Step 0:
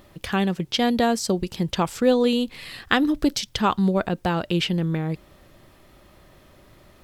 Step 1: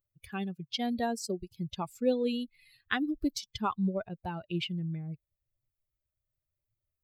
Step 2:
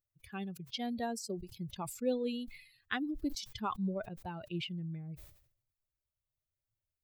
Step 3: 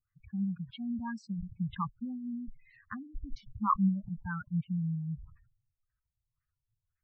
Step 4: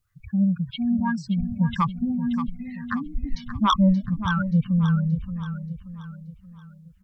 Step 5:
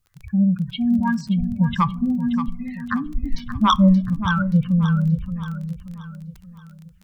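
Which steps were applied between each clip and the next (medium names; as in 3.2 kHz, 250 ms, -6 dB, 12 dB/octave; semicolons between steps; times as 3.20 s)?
expander on every frequency bin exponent 2; trim -7.5 dB
decay stretcher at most 90 dB/s; trim -5.5 dB
LFO low-pass sine 1.9 Hz 440–1800 Hz; spectral gate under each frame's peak -20 dB strong; elliptic band-stop 210–1100 Hz, stop band 40 dB; trim +8 dB
sine folder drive 9 dB, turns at -13.5 dBFS; on a send: feedback delay 578 ms, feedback 43%, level -10.5 dB
on a send at -18 dB: reverberation RT60 0.50 s, pre-delay 4 ms; on the sum: crackle 18 per s -36 dBFS; trim +3.5 dB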